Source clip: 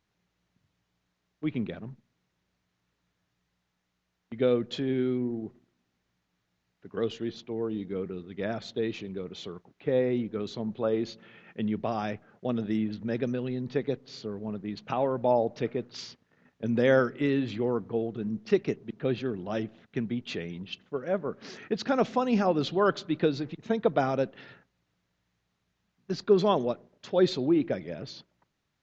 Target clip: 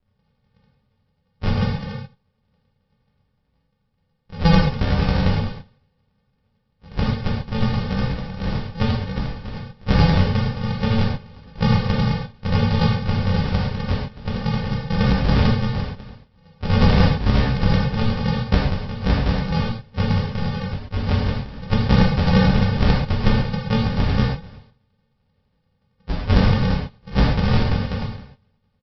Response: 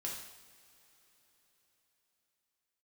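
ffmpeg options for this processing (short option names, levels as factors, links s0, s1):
-filter_complex "[0:a]acrossover=split=3600[s0][s1];[s1]acompressor=threshold=0.00224:ratio=4:attack=1:release=60[s2];[s0][s2]amix=inputs=2:normalize=0,asplit=2[s3][s4];[s4]alimiter=limit=0.0794:level=0:latency=1:release=27,volume=0.944[s5];[s3][s5]amix=inputs=2:normalize=0,asplit=4[s6][s7][s8][s9];[s7]asetrate=33038,aresample=44100,atempo=1.33484,volume=0.794[s10];[s8]asetrate=58866,aresample=44100,atempo=0.749154,volume=0.398[s11];[s9]asetrate=66075,aresample=44100,atempo=0.66742,volume=0.158[s12];[s6][s10][s11][s12]amix=inputs=4:normalize=0,tremolo=f=11:d=0.65,aresample=11025,acrusher=samples=33:mix=1:aa=0.000001,aresample=44100[s13];[1:a]atrim=start_sample=2205,afade=t=out:st=0.14:d=0.01,atrim=end_sample=6615,asetrate=27783,aresample=44100[s14];[s13][s14]afir=irnorm=-1:irlink=0,volume=1.58"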